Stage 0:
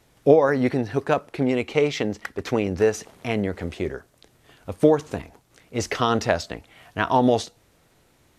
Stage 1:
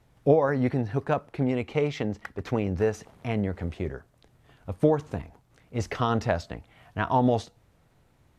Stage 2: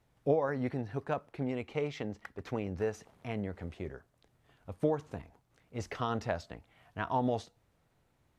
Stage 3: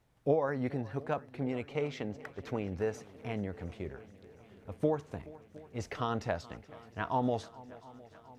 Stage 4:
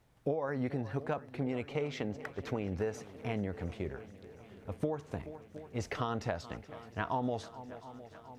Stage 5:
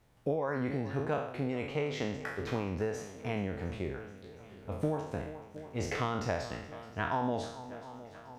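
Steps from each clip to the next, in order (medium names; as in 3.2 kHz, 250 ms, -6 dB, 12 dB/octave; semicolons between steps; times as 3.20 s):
FFT filter 130 Hz 0 dB, 360 Hz -8 dB, 850 Hz -5 dB, 6.1 kHz -13 dB; trim +1.5 dB
bass shelf 220 Hz -3.5 dB; trim -7.5 dB
shuffle delay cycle 712 ms, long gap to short 1.5:1, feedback 65%, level -20.5 dB
compression 6:1, threshold -33 dBFS, peak gain reduction 10.5 dB; trim +3 dB
spectral sustain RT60 0.73 s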